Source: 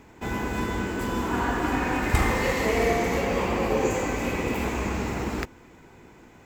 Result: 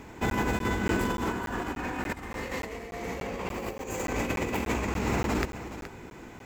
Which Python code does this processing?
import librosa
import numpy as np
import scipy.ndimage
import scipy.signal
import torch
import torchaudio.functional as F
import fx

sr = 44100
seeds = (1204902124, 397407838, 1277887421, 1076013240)

y = fx.high_shelf(x, sr, hz=7700.0, db=12.0, at=(3.49, 4.06))
y = fx.over_compress(y, sr, threshold_db=-30.0, ratio=-0.5)
y = y + 10.0 ** (-12.5 / 20.0) * np.pad(y, (int(422 * sr / 1000.0), 0))[:len(y)]
y = fx.buffer_crackle(y, sr, first_s=0.3, period_s=0.29, block=512, kind='zero')